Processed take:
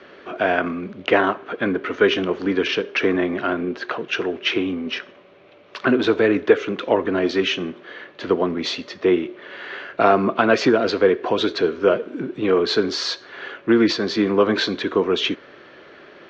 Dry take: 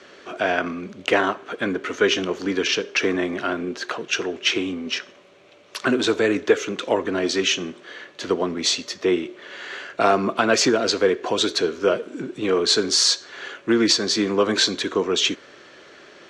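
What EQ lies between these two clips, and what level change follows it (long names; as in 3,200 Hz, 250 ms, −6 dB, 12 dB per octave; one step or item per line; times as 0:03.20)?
high-frequency loss of the air 270 metres
+3.5 dB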